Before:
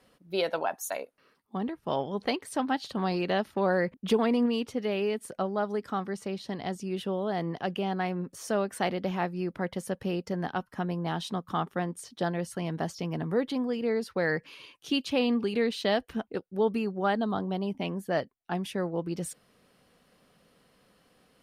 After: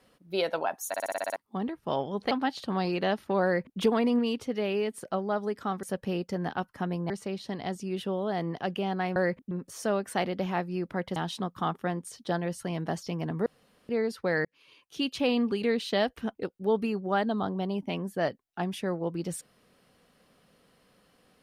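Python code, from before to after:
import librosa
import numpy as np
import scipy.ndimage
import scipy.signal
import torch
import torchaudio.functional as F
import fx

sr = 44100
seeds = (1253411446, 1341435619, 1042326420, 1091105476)

y = fx.edit(x, sr, fx.stutter_over(start_s=0.88, slice_s=0.06, count=8),
    fx.cut(start_s=2.31, length_s=0.27),
    fx.duplicate(start_s=3.71, length_s=0.35, to_s=8.16),
    fx.move(start_s=9.81, length_s=1.27, to_s=6.1),
    fx.room_tone_fill(start_s=13.38, length_s=0.43),
    fx.fade_in_span(start_s=14.37, length_s=0.73), tone=tone)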